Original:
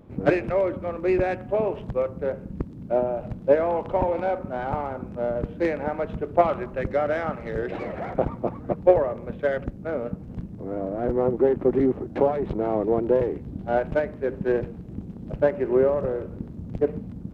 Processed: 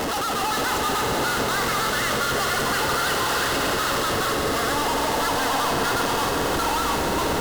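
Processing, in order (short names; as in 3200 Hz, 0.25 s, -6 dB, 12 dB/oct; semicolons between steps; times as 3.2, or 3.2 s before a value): infinite clipping; bell 69 Hz -4 dB 0.81 oct; notch 1000 Hz, Q 8.5; on a send: swelling echo 0.106 s, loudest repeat 8, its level -12.5 dB; on the sum: speed mistake 33 rpm record played at 78 rpm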